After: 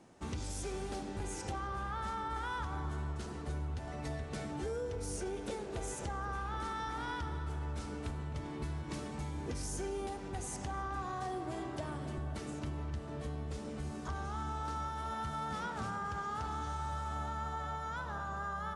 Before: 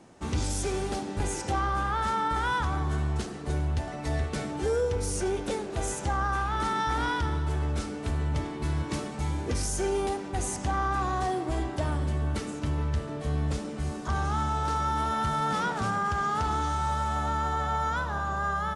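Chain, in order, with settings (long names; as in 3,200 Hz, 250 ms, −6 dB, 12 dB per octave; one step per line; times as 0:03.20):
0:11.02–0:12.18: high-pass filter 99 Hz 24 dB per octave
downward compressor 4 to 1, threshold −30 dBFS, peak gain reduction 6.5 dB
feedback echo with a low-pass in the loop 260 ms, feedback 79%, low-pass 2,000 Hz, level −12 dB
level −6.5 dB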